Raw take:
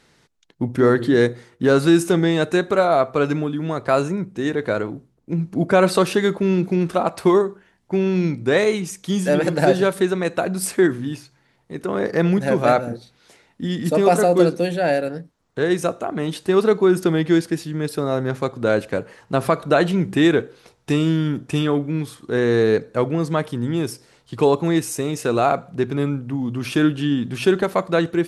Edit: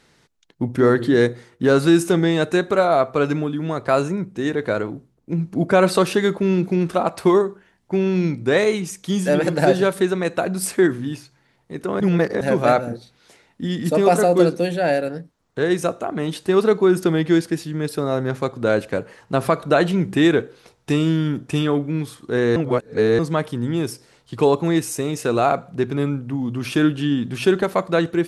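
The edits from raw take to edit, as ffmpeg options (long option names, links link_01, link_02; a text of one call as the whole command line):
ffmpeg -i in.wav -filter_complex "[0:a]asplit=5[link_01][link_02][link_03][link_04][link_05];[link_01]atrim=end=12.002[link_06];[link_02]atrim=start=11.998:end=12.412,asetpts=PTS-STARTPTS,areverse[link_07];[link_03]atrim=start=12.408:end=22.562[link_08];[link_04]atrim=start=22.558:end=23.192,asetpts=PTS-STARTPTS,areverse[link_09];[link_05]atrim=start=23.188[link_10];[link_06][link_07]acrossfade=duration=0.004:curve1=hsin:curve2=hsin[link_11];[link_11][link_08]acrossfade=duration=0.004:curve1=hsin:curve2=hsin[link_12];[link_12][link_09]acrossfade=duration=0.004:curve1=hsin:curve2=hsin[link_13];[link_13][link_10]acrossfade=duration=0.004:curve1=hsin:curve2=hsin" out.wav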